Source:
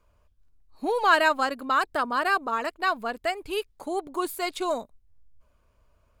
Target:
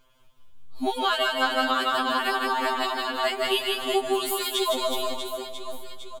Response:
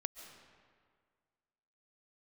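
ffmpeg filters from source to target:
-filter_complex "[0:a]equalizer=frequency=3300:width_type=o:width=0.34:gain=14.5,aecho=1:1:160|368|638.4|989.9|1447:0.631|0.398|0.251|0.158|0.1,asplit=2[link_01][link_02];[1:a]atrim=start_sample=2205,highshelf=frequency=4300:gain=10.5[link_03];[link_02][link_03]afir=irnorm=-1:irlink=0,volume=3dB[link_04];[link_01][link_04]amix=inputs=2:normalize=0,acompressor=threshold=-19dB:ratio=6,afftfilt=real='re*2.45*eq(mod(b,6),0)':imag='im*2.45*eq(mod(b,6),0)':win_size=2048:overlap=0.75"

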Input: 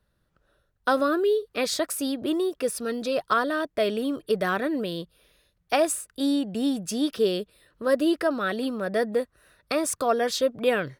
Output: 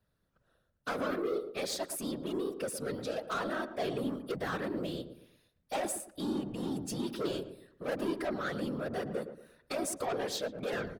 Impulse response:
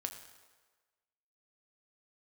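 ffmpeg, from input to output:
-filter_complex "[0:a]asoftclip=type=tanh:threshold=-24.5dB,afftfilt=real='hypot(re,im)*cos(2*PI*random(0))':imag='hypot(re,im)*sin(2*PI*random(1))':win_size=512:overlap=0.75,asplit=2[link_01][link_02];[link_02]adelay=114,lowpass=frequency=910:poles=1,volume=-8.5dB,asplit=2[link_03][link_04];[link_04]adelay=114,lowpass=frequency=910:poles=1,volume=0.37,asplit=2[link_05][link_06];[link_06]adelay=114,lowpass=frequency=910:poles=1,volume=0.37,asplit=2[link_07][link_08];[link_08]adelay=114,lowpass=frequency=910:poles=1,volume=0.37[link_09];[link_01][link_03][link_05][link_07][link_09]amix=inputs=5:normalize=0"

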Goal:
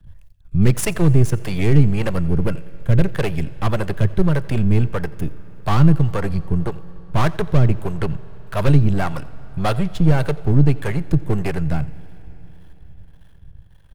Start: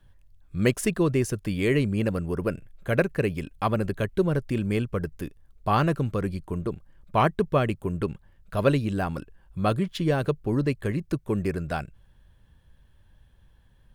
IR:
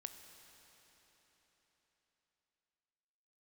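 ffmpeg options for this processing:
-filter_complex "[0:a]aeval=exprs='if(lt(val(0),0),0.251*val(0),val(0))':channel_layout=same,lowshelf=frequency=190:width_type=q:width=1.5:gain=6.5,acrossover=split=230|5500[link_01][link_02][link_03];[link_02]volume=26dB,asoftclip=hard,volume=-26dB[link_04];[link_01][link_04][link_03]amix=inputs=3:normalize=0,acrossover=split=410[link_05][link_06];[link_05]aeval=exprs='val(0)*(1-0.7/2+0.7/2*cos(2*PI*1.7*n/s))':channel_layout=same[link_07];[link_06]aeval=exprs='val(0)*(1-0.7/2-0.7/2*cos(2*PI*1.7*n/s))':channel_layout=same[link_08];[link_07][link_08]amix=inputs=2:normalize=0,asplit=2[link_09][link_10];[link_10]adelay=87.46,volume=-21dB,highshelf=frequency=4000:gain=-1.97[link_11];[link_09][link_11]amix=inputs=2:normalize=0,asplit=2[link_12][link_13];[1:a]atrim=start_sample=2205[link_14];[link_13][link_14]afir=irnorm=-1:irlink=0,volume=-4dB[link_15];[link_12][link_15]amix=inputs=2:normalize=0,volume=9dB"

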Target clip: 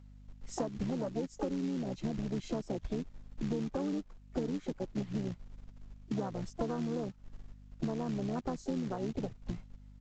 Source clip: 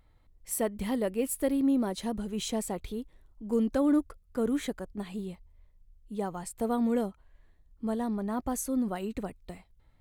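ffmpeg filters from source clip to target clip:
ffmpeg -i in.wav -filter_complex "[0:a]asplit=3[link_01][link_02][link_03];[link_02]asetrate=29433,aresample=44100,atempo=1.49831,volume=-5dB[link_04];[link_03]asetrate=66075,aresample=44100,atempo=0.66742,volume=-13dB[link_05];[link_01][link_04][link_05]amix=inputs=3:normalize=0,afwtdn=0.0251,asplit=2[link_06][link_07];[link_07]alimiter=level_in=0.5dB:limit=-24dB:level=0:latency=1:release=41,volume=-0.5dB,volume=0dB[link_08];[link_06][link_08]amix=inputs=2:normalize=0,acrossover=split=200[link_09][link_10];[link_09]acompressor=threshold=-26dB:ratio=6[link_11];[link_11][link_10]amix=inputs=2:normalize=0,acrossover=split=540|2600[link_12][link_13][link_14];[link_12]acrusher=bits=4:mode=log:mix=0:aa=0.000001[link_15];[link_15][link_13][link_14]amix=inputs=3:normalize=0,aeval=exprs='val(0)+0.00178*(sin(2*PI*50*n/s)+sin(2*PI*2*50*n/s)/2+sin(2*PI*3*50*n/s)/3+sin(2*PI*4*50*n/s)/4+sin(2*PI*5*50*n/s)/5)':channel_layout=same,acompressor=threshold=-34dB:ratio=16,volume=2.5dB" -ar 16000 -c:a pcm_mulaw out.wav

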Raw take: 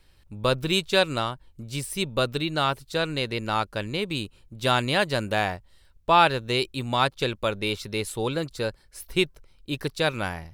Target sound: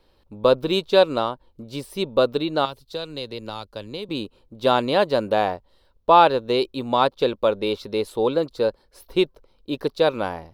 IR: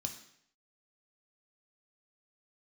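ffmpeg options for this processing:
-filter_complex "[0:a]asettb=1/sr,asplit=3[link_01][link_02][link_03];[link_01]atrim=end=2.654[link_04];[link_02]atrim=start=2.65:end=4.09,asetpts=PTS-STARTPTS,afade=type=in:duration=0.004:curve=qsin,afade=type=out:start_time=1.436:duration=0.004:curve=qsin,acrossover=split=130|3000[link_05][link_06][link_07];[link_06]acompressor=threshold=-38dB:ratio=4[link_08];[link_05][link_08][link_07]amix=inputs=3:normalize=0[link_09];[link_03]atrim=start=4.086[link_10];[link_04][link_09]acrossfade=duration=0.004:curve1=hsin:curve2=qsin[link_11];[link_11][link_10]acrossfade=duration=0.004:curve1=qsin:curve2=hsin,equalizer=frequency=125:width_type=o:width=1:gain=-3,equalizer=frequency=250:width_type=o:width=1:gain=7,equalizer=frequency=500:width_type=o:width=1:gain=11,equalizer=frequency=1000:width_type=o:width=1:gain=8,equalizer=frequency=2000:width_type=o:width=1:gain=-4,equalizer=frequency=4000:width_type=o:width=1:gain=6,equalizer=frequency=8000:width_type=o:width=1:gain=-8,volume=-4.5dB"

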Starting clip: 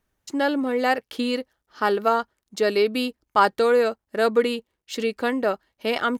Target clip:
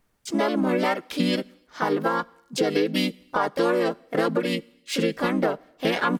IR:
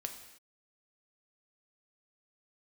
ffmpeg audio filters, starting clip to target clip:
-filter_complex "[0:a]aecho=1:1:5:0.3,alimiter=limit=-13.5dB:level=0:latency=1:release=281,acompressor=threshold=-23dB:ratio=16,asplit=3[link_01][link_02][link_03];[link_02]asetrate=33038,aresample=44100,atempo=1.33484,volume=-1dB[link_04];[link_03]asetrate=52444,aresample=44100,atempo=0.840896,volume=-3dB[link_05];[link_01][link_04][link_05]amix=inputs=3:normalize=0,asplit=2[link_06][link_07];[1:a]atrim=start_sample=2205,highshelf=frequency=8400:gain=6[link_08];[link_07][link_08]afir=irnorm=-1:irlink=0,volume=-16dB[link_09];[link_06][link_09]amix=inputs=2:normalize=0"

